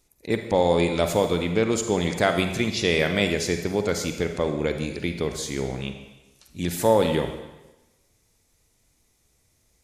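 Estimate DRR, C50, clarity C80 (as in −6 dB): 6.0 dB, 7.0 dB, 9.0 dB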